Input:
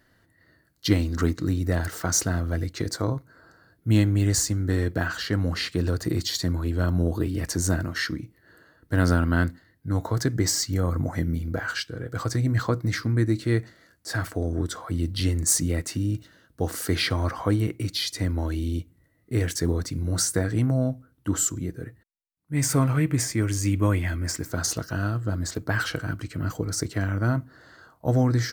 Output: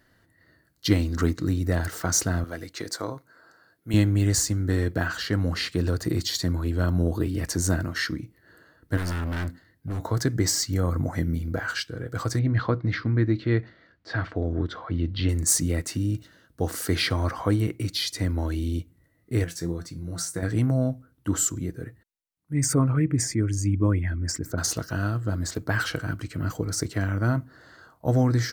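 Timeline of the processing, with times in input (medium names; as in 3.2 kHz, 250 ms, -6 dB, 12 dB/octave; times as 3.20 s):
2.44–3.94 s: high-pass 500 Hz 6 dB/octave
8.97–10.03 s: overload inside the chain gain 26 dB
12.39–15.29 s: low-pass 3.9 kHz 24 dB/octave
19.44–20.43 s: feedback comb 170 Hz, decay 0.21 s, mix 70%
22.53–24.58 s: resonances exaggerated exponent 1.5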